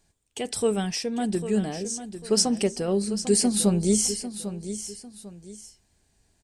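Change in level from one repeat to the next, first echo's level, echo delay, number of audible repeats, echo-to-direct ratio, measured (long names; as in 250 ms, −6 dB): −9.5 dB, −11.5 dB, 798 ms, 2, −11.0 dB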